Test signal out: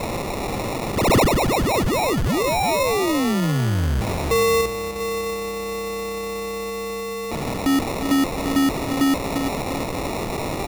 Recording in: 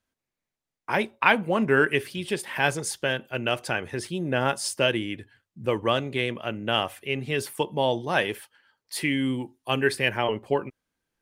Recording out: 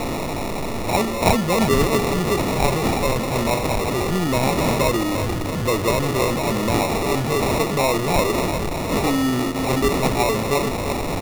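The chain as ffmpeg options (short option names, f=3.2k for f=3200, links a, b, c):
-filter_complex "[0:a]aeval=exprs='val(0)+0.5*0.112*sgn(val(0))':c=same,equalizer=f=11k:w=1.6:g=7,anlmdn=100,asplit=2[a][b];[b]adelay=346,lowpass=f=4.4k:p=1,volume=-8dB,asplit=2[c][d];[d]adelay=346,lowpass=f=4.4k:p=1,volume=0.42,asplit=2[e][f];[f]adelay=346,lowpass=f=4.4k:p=1,volume=0.42,asplit=2[g][h];[h]adelay=346,lowpass=f=4.4k:p=1,volume=0.42,asplit=2[i][j];[j]adelay=346,lowpass=f=4.4k:p=1,volume=0.42[k];[c][e][g][i][k]amix=inputs=5:normalize=0[l];[a][l]amix=inputs=2:normalize=0,acrusher=samples=28:mix=1:aa=0.000001"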